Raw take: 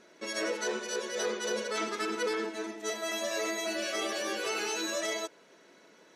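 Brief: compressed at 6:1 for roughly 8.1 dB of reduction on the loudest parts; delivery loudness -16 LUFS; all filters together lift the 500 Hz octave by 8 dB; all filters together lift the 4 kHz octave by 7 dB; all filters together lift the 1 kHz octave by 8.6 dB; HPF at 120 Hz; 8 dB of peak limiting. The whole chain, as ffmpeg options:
-af "highpass=120,equalizer=f=500:t=o:g=7,equalizer=f=1000:t=o:g=9,equalizer=f=4000:t=o:g=8,acompressor=threshold=0.0355:ratio=6,volume=10.6,alimiter=limit=0.398:level=0:latency=1"

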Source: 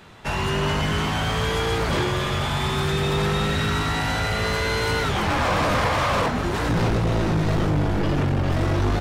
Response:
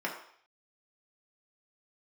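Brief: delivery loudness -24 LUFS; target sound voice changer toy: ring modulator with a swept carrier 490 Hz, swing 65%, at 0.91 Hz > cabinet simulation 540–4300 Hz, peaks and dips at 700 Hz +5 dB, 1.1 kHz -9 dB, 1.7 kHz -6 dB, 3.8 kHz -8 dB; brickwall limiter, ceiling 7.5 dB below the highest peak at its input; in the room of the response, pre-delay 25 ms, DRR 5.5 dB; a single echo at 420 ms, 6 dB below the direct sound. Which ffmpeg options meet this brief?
-filter_complex "[0:a]alimiter=limit=0.0668:level=0:latency=1,aecho=1:1:420:0.501,asplit=2[s0][s1];[1:a]atrim=start_sample=2205,adelay=25[s2];[s1][s2]afir=irnorm=-1:irlink=0,volume=0.251[s3];[s0][s3]amix=inputs=2:normalize=0,aeval=exprs='val(0)*sin(2*PI*490*n/s+490*0.65/0.91*sin(2*PI*0.91*n/s))':c=same,highpass=540,equalizer=f=700:t=q:w=4:g=5,equalizer=f=1100:t=q:w=4:g=-9,equalizer=f=1700:t=q:w=4:g=-6,equalizer=f=3800:t=q:w=4:g=-8,lowpass=f=4300:w=0.5412,lowpass=f=4300:w=1.3066,volume=2.99"

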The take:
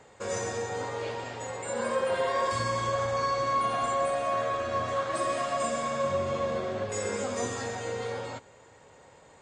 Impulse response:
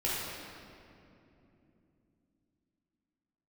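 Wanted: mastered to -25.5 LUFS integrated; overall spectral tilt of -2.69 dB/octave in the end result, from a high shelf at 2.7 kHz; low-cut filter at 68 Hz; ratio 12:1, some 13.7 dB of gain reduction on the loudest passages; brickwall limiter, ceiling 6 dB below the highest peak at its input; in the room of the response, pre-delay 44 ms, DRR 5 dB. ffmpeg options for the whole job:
-filter_complex "[0:a]highpass=68,highshelf=f=2700:g=8.5,acompressor=threshold=0.0141:ratio=12,alimiter=level_in=2.66:limit=0.0631:level=0:latency=1,volume=0.376,asplit=2[s0][s1];[1:a]atrim=start_sample=2205,adelay=44[s2];[s1][s2]afir=irnorm=-1:irlink=0,volume=0.224[s3];[s0][s3]amix=inputs=2:normalize=0,volume=5.62"

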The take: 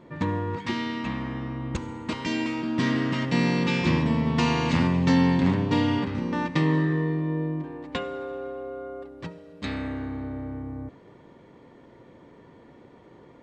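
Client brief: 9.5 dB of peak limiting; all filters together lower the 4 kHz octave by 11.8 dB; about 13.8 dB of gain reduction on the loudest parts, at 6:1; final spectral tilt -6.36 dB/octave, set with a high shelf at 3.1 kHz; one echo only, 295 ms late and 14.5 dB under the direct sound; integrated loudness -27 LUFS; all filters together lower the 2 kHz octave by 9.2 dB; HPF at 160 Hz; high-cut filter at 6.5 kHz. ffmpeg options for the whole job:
-af "highpass=160,lowpass=6500,equalizer=f=2000:t=o:g=-6.5,highshelf=f=3100:g=-8,equalizer=f=4000:t=o:g=-7,acompressor=threshold=0.02:ratio=6,alimiter=level_in=2.37:limit=0.0631:level=0:latency=1,volume=0.422,aecho=1:1:295:0.188,volume=4.47"

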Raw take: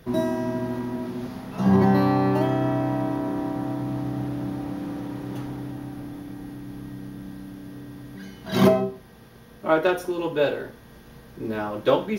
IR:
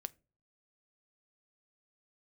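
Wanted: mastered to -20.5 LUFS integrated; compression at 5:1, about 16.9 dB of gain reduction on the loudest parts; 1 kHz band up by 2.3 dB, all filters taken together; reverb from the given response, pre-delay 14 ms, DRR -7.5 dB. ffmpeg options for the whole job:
-filter_complex "[0:a]equalizer=f=1000:t=o:g=3,acompressor=threshold=0.0251:ratio=5,asplit=2[s0][s1];[1:a]atrim=start_sample=2205,adelay=14[s2];[s1][s2]afir=irnorm=-1:irlink=0,volume=3.35[s3];[s0][s3]amix=inputs=2:normalize=0,volume=2.11"

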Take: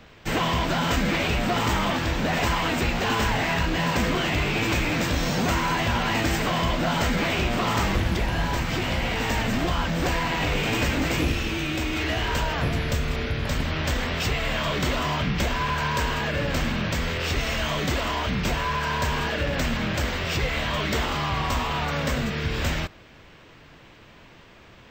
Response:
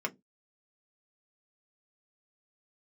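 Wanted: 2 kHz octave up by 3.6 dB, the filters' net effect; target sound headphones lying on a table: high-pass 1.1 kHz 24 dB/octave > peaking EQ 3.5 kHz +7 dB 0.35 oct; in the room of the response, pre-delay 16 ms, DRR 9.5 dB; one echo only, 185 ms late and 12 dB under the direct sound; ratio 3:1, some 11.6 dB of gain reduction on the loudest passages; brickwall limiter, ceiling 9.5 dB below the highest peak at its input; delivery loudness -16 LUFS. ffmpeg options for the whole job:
-filter_complex "[0:a]equalizer=f=2000:t=o:g=4,acompressor=threshold=0.0178:ratio=3,alimiter=level_in=2.37:limit=0.0631:level=0:latency=1,volume=0.422,aecho=1:1:185:0.251,asplit=2[s0][s1];[1:a]atrim=start_sample=2205,adelay=16[s2];[s1][s2]afir=irnorm=-1:irlink=0,volume=0.188[s3];[s0][s3]amix=inputs=2:normalize=0,highpass=f=1100:w=0.5412,highpass=f=1100:w=1.3066,equalizer=f=3500:t=o:w=0.35:g=7,volume=15.8"

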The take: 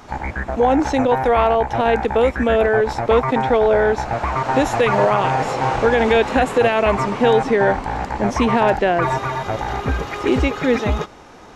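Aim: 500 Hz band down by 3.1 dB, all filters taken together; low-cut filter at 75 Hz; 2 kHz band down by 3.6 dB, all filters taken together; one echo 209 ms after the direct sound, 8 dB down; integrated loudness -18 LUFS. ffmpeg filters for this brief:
-af "highpass=75,equalizer=f=500:t=o:g=-3.5,equalizer=f=2000:t=o:g=-4.5,aecho=1:1:209:0.398,volume=1.19"

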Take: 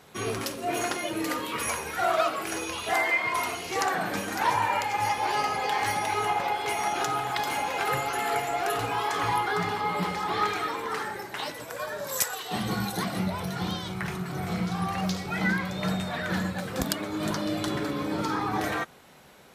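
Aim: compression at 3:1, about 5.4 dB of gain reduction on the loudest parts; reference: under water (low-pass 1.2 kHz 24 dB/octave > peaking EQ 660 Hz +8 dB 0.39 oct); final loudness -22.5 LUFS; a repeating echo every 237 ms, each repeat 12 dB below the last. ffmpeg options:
-af "acompressor=threshold=0.0398:ratio=3,lowpass=f=1200:w=0.5412,lowpass=f=1200:w=1.3066,equalizer=f=660:t=o:w=0.39:g=8,aecho=1:1:237|474|711:0.251|0.0628|0.0157,volume=2.66"

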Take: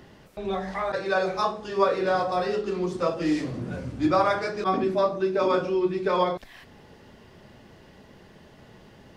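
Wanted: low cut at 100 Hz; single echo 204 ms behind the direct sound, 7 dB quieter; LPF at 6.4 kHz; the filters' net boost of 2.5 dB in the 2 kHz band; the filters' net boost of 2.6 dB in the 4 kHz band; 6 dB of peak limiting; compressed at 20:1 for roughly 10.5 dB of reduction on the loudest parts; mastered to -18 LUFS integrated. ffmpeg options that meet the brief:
-af "highpass=100,lowpass=6400,equalizer=f=2000:t=o:g=3,equalizer=f=4000:t=o:g=3,acompressor=threshold=0.0501:ratio=20,alimiter=limit=0.0668:level=0:latency=1,aecho=1:1:204:0.447,volume=5.01"

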